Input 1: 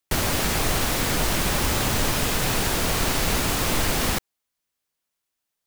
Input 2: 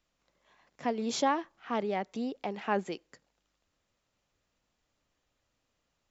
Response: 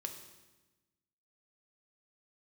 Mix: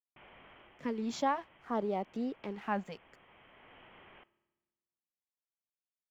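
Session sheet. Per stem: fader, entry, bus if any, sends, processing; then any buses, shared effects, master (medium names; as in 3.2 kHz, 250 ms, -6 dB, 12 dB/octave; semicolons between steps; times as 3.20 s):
-16.5 dB, 0.05 s, send -8 dB, ring modulator 650 Hz; integer overflow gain 26 dB; rippled Chebyshev low-pass 3.2 kHz, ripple 3 dB; auto duck -9 dB, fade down 0.20 s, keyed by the second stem
-0.5 dB, 0.00 s, no send, crossover distortion -56.5 dBFS; LFO notch saw down 0.63 Hz 220–3300 Hz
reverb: on, RT60 1.1 s, pre-delay 3 ms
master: treble shelf 2.4 kHz -9.5 dB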